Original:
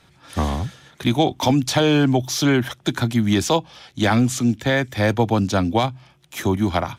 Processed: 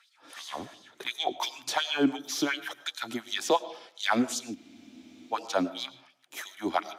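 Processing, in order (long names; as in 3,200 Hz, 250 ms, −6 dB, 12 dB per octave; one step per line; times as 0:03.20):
auto-filter high-pass sine 2.8 Hz 290–4,600 Hz
comb and all-pass reverb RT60 0.6 s, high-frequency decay 0.5×, pre-delay 65 ms, DRR 16 dB
frozen spectrum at 0:04.58, 0.74 s
level −9 dB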